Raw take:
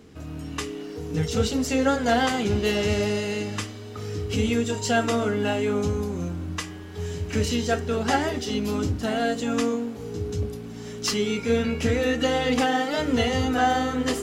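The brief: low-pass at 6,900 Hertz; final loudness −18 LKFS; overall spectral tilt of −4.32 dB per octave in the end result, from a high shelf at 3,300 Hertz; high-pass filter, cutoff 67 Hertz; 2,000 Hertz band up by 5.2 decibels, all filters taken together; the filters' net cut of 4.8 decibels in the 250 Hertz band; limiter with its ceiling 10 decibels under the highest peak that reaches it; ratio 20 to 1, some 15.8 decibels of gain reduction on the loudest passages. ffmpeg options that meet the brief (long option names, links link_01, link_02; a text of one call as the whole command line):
ffmpeg -i in.wav -af "highpass=67,lowpass=6900,equalizer=frequency=250:width_type=o:gain=-5.5,equalizer=frequency=2000:width_type=o:gain=5.5,highshelf=frequency=3300:gain=4,acompressor=threshold=-32dB:ratio=20,volume=20dB,alimiter=limit=-9dB:level=0:latency=1" out.wav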